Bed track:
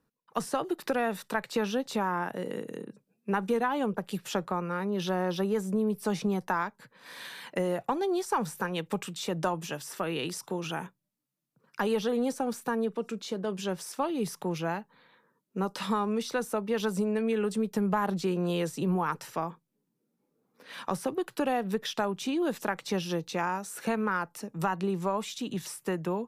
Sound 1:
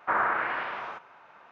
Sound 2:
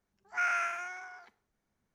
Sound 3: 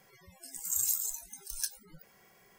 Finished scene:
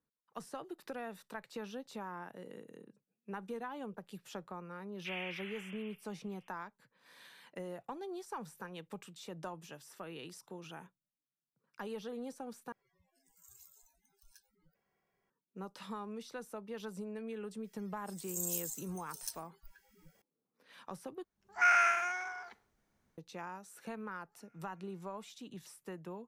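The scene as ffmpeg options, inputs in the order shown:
ffmpeg -i bed.wav -i cue0.wav -i cue1.wav -i cue2.wav -filter_complex "[3:a]asplit=2[link_01][link_02];[2:a]asplit=2[link_03][link_04];[0:a]volume=-14.5dB[link_05];[1:a]lowpass=frequency=3100:width_type=q:width=0.5098,lowpass=frequency=3100:width_type=q:width=0.6013,lowpass=frequency=3100:width_type=q:width=0.9,lowpass=frequency=3100:width_type=q:width=2.563,afreqshift=-3700[link_06];[link_01]equalizer=frequency=10000:width_type=o:width=2.1:gain=-14.5[link_07];[link_02]acrossover=split=1800[link_08][link_09];[link_08]adelay=480[link_10];[link_10][link_09]amix=inputs=2:normalize=0[link_11];[link_03]dynaudnorm=framelen=120:gausssize=3:maxgain=13dB[link_12];[link_04]acompressor=threshold=-58dB:ratio=6:attack=3.2:release=140:knee=1:detection=peak[link_13];[link_05]asplit=3[link_14][link_15][link_16];[link_14]atrim=end=12.724[link_17];[link_07]atrim=end=2.58,asetpts=PTS-STARTPTS,volume=-17.5dB[link_18];[link_15]atrim=start=15.296:end=21.244[link_19];[link_12]atrim=end=1.94,asetpts=PTS-STARTPTS,volume=-9dB[link_20];[link_16]atrim=start=23.176[link_21];[link_06]atrim=end=1.51,asetpts=PTS-STARTPTS,volume=-17.5dB,afade=type=in:duration=0.004:curve=hsin,afade=type=out:start_time=1.506:duration=0.004:curve=hsin,adelay=219177S[link_22];[link_11]atrim=end=2.58,asetpts=PTS-STARTPTS,volume=-7.5dB,afade=type=in:duration=0.004:curve=hsin,afade=type=out:start_time=2.576:duration=0.004:curve=hsin,adelay=777924S[link_23];[link_13]atrim=end=1.94,asetpts=PTS-STARTPTS,volume=-17dB,afade=type=in:duration=0.004:curve=hsin,afade=type=out:start_time=1.936:duration=0.004:curve=hsin,adelay=24030[link_24];[link_17][link_18]acrossfade=duration=0.004:curve1=hsin:curve2=hsin[link_25];[link_25][link_19]acrossfade=duration=0.004:curve1=hsin:curve2=hsin[link_26];[link_26][link_20]acrossfade=duration=0.004:curve1=hsin:curve2=hsin[link_27];[link_27][link_21]acrossfade=duration=0.004:curve1=hsin:curve2=hsin[link_28];[link_28][link_22][link_23][link_24]amix=inputs=4:normalize=0" out.wav

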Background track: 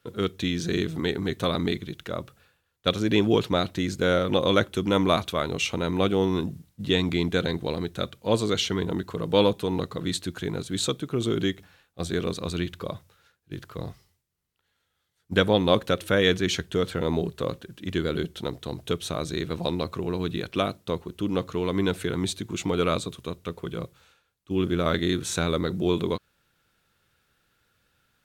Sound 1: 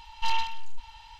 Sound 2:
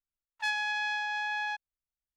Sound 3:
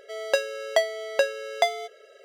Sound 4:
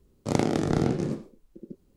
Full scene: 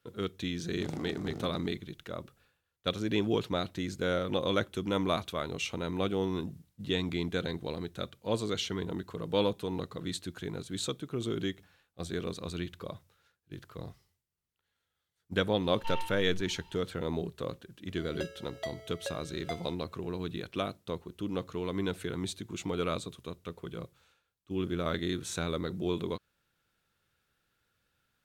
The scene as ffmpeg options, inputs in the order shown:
ffmpeg -i bed.wav -i cue0.wav -i cue1.wav -i cue2.wav -i cue3.wav -filter_complex "[0:a]volume=-8dB[link_01];[1:a]acrossover=split=3000[link_02][link_03];[link_03]acompressor=threshold=-45dB:ratio=4:attack=1:release=60[link_04];[link_02][link_04]amix=inputs=2:normalize=0[link_05];[4:a]atrim=end=1.96,asetpts=PTS-STARTPTS,volume=-17.5dB,afade=type=in:duration=0.004:curve=hsin,afade=type=out:start_time=1.956:duration=0.004:curve=hsin,adelay=540[link_06];[link_05]atrim=end=1.19,asetpts=PTS-STARTPTS,volume=-9.5dB,afade=type=in:duration=0.004:curve=hsin,afade=type=out:start_time=1.186:duration=0.004:curve=hsin,adelay=15620[link_07];[3:a]atrim=end=2.24,asetpts=PTS-STARTPTS,volume=-17dB,afade=type=in:duration=0.004:curve=hsin,afade=type=out:start_time=2.236:duration=0.004:curve=hsin,adelay=17870[link_08];[link_01][link_06][link_07][link_08]amix=inputs=4:normalize=0" out.wav

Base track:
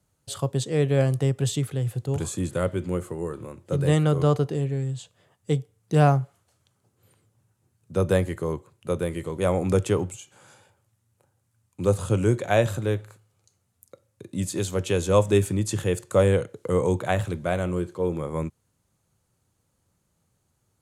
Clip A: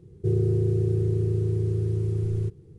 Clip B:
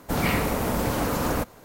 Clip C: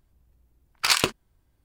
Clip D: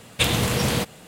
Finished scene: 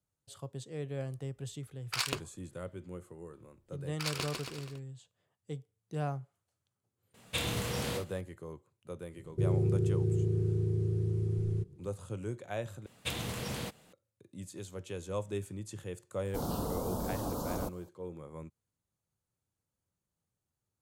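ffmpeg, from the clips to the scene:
ffmpeg -i bed.wav -i cue0.wav -i cue1.wav -i cue2.wav -i cue3.wav -filter_complex "[3:a]asplit=2[link_01][link_02];[4:a]asplit=2[link_03][link_04];[0:a]volume=-17dB[link_05];[link_02]aecho=1:1:150|277.5|385.9|478|556.3|622.9:0.631|0.398|0.251|0.158|0.1|0.0631[link_06];[link_03]aecho=1:1:27|58:0.531|0.376[link_07];[1:a]equalizer=frequency=190:width_type=o:width=1.3:gain=4.5[link_08];[2:a]asuperstop=centerf=2100:order=4:qfactor=0.78[link_09];[link_05]asplit=2[link_10][link_11];[link_10]atrim=end=12.864[link_12];[link_04]atrim=end=1.07,asetpts=PTS-STARTPTS,volume=-15.5dB[link_13];[link_11]atrim=start=13.926[link_14];[link_01]atrim=end=1.64,asetpts=PTS-STARTPTS,volume=-12.5dB,afade=type=in:duration=0.004:curve=hsin,afade=type=out:start_time=1.636:duration=0.004:curve=hsin,adelay=1090[link_15];[link_06]atrim=end=1.64,asetpts=PTS-STARTPTS,volume=-16.5dB,afade=type=in:duration=0.004:curve=hsin,afade=type=out:start_time=1.636:duration=0.004:curve=hsin,adelay=3160[link_16];[link_07]atrim=end=1.07,asetpts=PTS-STARTPTS,volume=-14dB,afade=type=in:duration=0.004:curve=hsin,afade=type=out:start_time=1.066:duration=0.004:curve=hsin,adelay=314874S[link_17];[link_08]atrim=end=2.78,asetpts=PTS-STARTPTS,volume=-7.5dB,afade=type=in:duration=0.004:curve=hsin,afade=type=out:start_time=2.776:duration=0.004:curve=hsin,adelay=403074S[link_18];[link_09]atrim=end=1.64,asetpts=PTS-STARTPTS,volume=-10.5dB,afade=type=in:duration=0.004:curve=hsin,afade=type=out:start_time=1.636:duration=0.004:curve=hsin,adelay=16250[link_19];[link_12][link_13]acrossfade=duration=0.004:curve1=hsin:curve2=hsin[link_20];[link_20][link_14]acrossfade=duration=0.004:curve1=hsin:curve2=hsin[link_21];[link_21][link_15][link_16][link_17][link_18][link_19]amix=inputs=6:normalize=0" out.wav

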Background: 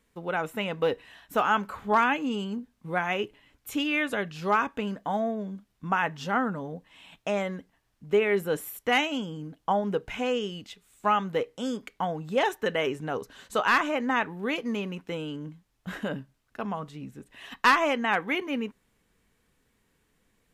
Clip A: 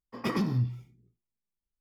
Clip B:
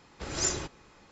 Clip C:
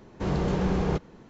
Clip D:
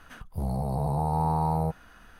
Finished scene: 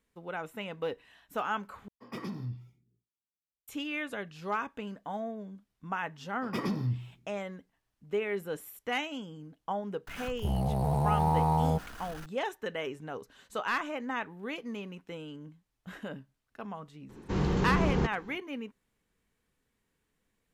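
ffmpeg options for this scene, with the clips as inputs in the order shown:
ffmpeg -i bed.wav -i cue0.wav -i cue1.wav -i cue2.wav -i cue3.wav -filter_complex "[1:a]asplit=2[link_01][link_02];[0:a]volume=-8.5dB[link_03];[link_01]highpass=62[link_04];[4:a]aeval=exprs='val(0)+0.5*0.0075*sgn(val(0))':channel_layout=same[link_05];[3:a]equalizer=frequency=630:width=3.9:gain=-9[link_06];[link_03]asplit=2[link_07][link_08];[link_07]atrim=end=1.884[link_09];[link_04]atrim=end=1.8,asetpts=PTS-STARTPTS,volume=-10dB[link_10];[link_08]atrim=start=3.676[link_11];[link_02]atrim=end=1.8,asetpts=PTS-STARTPTS,volume=-3.5dB,afade=type=in:duration=0.004:curve=hsin,afade=type=out:start_time=1.796:duration=0.004:curve=hsin,adelay=6290[link_12];[link_05]atrim=end=2.19,asetpts=PTS-STARTPTS,volume=-1dB,afade=type=in:duration=0.004:curve=hsin,afade=type=out:start_time=2.186:duration=0.004:curve=hsin,adelay=10070[link_13];[link_06]atrim=end=1.29,asetpts=PTS-STARTPTS,volume=-1.5dB,afade=type=in:duration=0.004:curve=hsin,afade=type=out:start_time=1.286:duration=0.004:curve=hsin,adelay=17090[link_14];[link_09][link_10]acrossfade=duration=0.004:curve1=hsin:curve2=hsin[link_15];[link_15][link_11]acrossfade=duration=0.004:curve1=hsin:curve2=hsin[link_16];[link_16][link_12][link_13][link_14]amix=inputs=4:normalize=0" out.wav

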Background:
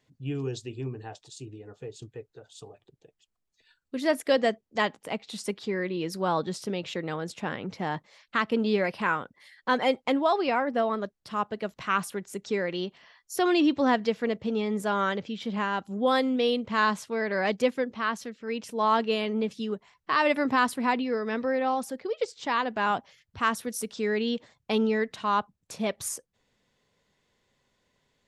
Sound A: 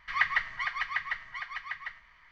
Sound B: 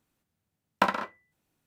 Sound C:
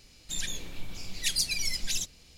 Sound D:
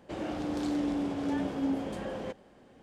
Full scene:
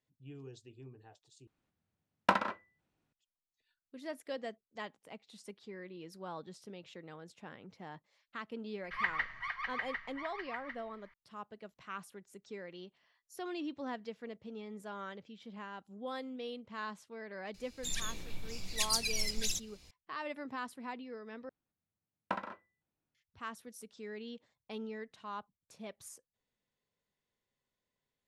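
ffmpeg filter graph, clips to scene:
ffmpeg -i bed.wav -i cue0.wav -i cue1.wav -i cue2.wav -filter_complex "[2:a]asplit=2[link_01][link_02];[0:a]volume=-17.5dB[link_03];[link_01]adynamicsmooth=sensitivity=4:basefreq=5200[link_04];[1:a]highshelf=frequency=3200:gain=-8[link_05];[3:a]bandreject=frequency=3100:width=17[link_06];[link_02]lowpass=frequency=2100:poles=1[link_07];[link_03]asplit=3[link_08][link_09][link_10];[link_08]atrim=end=1.474[link_11];[link_04]atrim=end=1.66,asetpts=PTS-STARTPTS,volume=-3.5dB[link_12];[link_09]atrim=start=3.126:end=21.494[link_13];[link_07]atrim=end=1.66,asetpts=PTS-STARTPTS,volume=-11.5dB[link_14];[link_10]atrim=start=23.146[link_15];[link_05]atrim=end=2.31,asetpts=PTS-STARTPTS,volume=-5dB,afade=type=in:duration=0.004:curve=hsin,afade=type=out:start_time=2.306:duration=0.004:curve=hsin,adelay=8830[link_16];[link_06]atrim=end=2.37,asetpts=PTS-STARTPTS,volume=-4dB,afade=type=in:duration=0.004:curve=hsin,afade=type=out:start_time=2.366:duration=0.004:curve=hsin,adelay=17540[link_17];[link_11][link_12]acrossfade=duration=0.004:curve1=hsin:curve2=hsin[link_18];[link_18][link_13]acrossfade=duration=0.004:curve1=hsin:curve2=hsin[link_19];[link_19][link_14]acrossfade=duration=0.004:curve1=hsin:curve2=hsin[link_20];[link_20][link_15]acrossfade=duration=0.004:curve1=hsin:curve2=hsin[link_21];[link_21][link_16][link_17]amix=inputs=3:normalize=0" out.wav

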